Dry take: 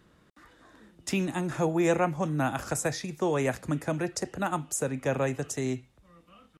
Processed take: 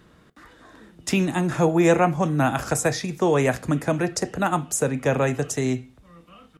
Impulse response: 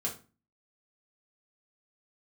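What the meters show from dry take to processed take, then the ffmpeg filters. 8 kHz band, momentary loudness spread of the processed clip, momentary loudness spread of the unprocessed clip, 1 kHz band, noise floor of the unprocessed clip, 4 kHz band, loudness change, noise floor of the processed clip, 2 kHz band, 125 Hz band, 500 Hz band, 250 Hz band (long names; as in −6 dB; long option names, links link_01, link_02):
+6.0 dB, 7 LU, 6 LU, +7.5 dB, −63 dBFS, +6.5 dB, +7.0 dB, −55 dBFS, +7.0 dB, +7.5 dB, +7.0 dB, +7.0 dB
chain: -filter_complex "[0:a]asplit=2[link_01][link_02];[1:a]atrim=start_sample=2205,lowpass=6300[link_03];[link_02][link_03]afir=irnorm=-1:irlink=0,volume=-16dB[link_04];[link_01][link_04]amix=inputs=2:normalize=0,volume=6dB"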